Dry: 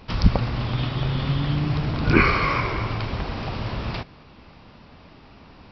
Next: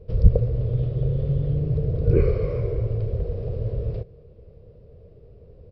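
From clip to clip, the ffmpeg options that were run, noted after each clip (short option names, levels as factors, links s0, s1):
-af "firequalizer=gain_entry='entry(110,0);entry(260,-20);entry(460,6);entry(840,-29)':delay=0.05:min_phase=1,volume=1.58"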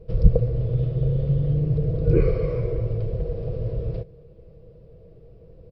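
-af "aecho=1:1:6.1:0.44"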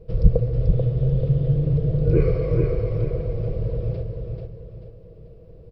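-af "aecho=1:1:438|876|1314|1752|2190:0.596|0.214|0.0772|0.0278|0.01"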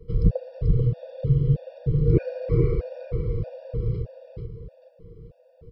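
-filter_complex "[0:a]acrossover=split=110[s0][s1];[s0]asoftclip=type=hard:threshold=0.2[s2];[s2][s1]amix=inputs=2:normalize=0,afftfilt=real='re*gt(sin(2*PI*1.6*pts/sr)*(1-2*mod(floor(b*sr/1024/480),2)),0)':imag='im*gt(sin(2*PI*1.6*pts/sr)*(1-2*mod(floor(b*sr/1024/480),2)),0)':win_size=1024:overlap=0.75"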